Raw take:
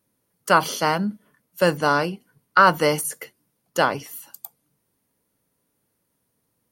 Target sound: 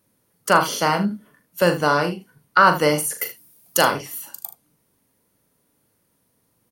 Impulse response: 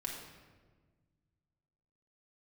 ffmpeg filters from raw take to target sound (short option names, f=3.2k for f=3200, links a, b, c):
-filter_complex "[0:a]asettb=1/sr,asplit=3[a][b][c];[a]atrim=end=3.184[d];[b]atrim=start=3.18:end=3.91,asetpts=PTS-STARTPTS,afade=t=in:d=0.004:c=qsin,afade=t=out:st=0.726:d=0.004:c=qsin,aemphasis=mode=production:type=75kf[e];[c]atrim=start=3.906[f];[d][e]acrossfade=d=0.004:c1=hsin:c2=qsin[g];[g][f]acrossfade=d=0.004:c1=qsin:c2=hsin,asplit=2[h][i];[i]acompressor=threshold=-30dB:ratio=6,volume=0dB[j];[h][j]amix=inputs=2:normalize=0,aecho=1:1:40|77:0.376|0.211,volume=-1dB"